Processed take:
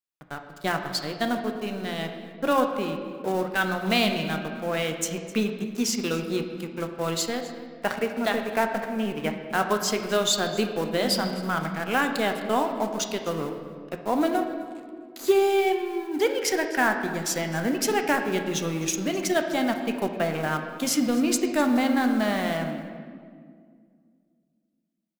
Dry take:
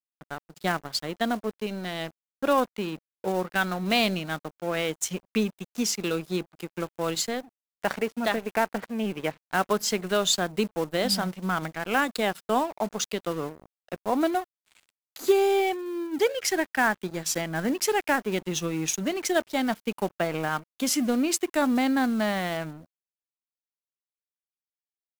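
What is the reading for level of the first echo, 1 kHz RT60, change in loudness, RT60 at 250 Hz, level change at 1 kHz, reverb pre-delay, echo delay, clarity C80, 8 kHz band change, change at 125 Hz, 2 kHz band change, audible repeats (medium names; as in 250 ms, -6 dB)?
-18.5 dB, 1.8 s, +1.0 dB, 2.9 s, +1.0 dB, 8 ms, 257 ms, 8.0 dB, 0.0 dB, +2.0 dB, +1.5 dB, 1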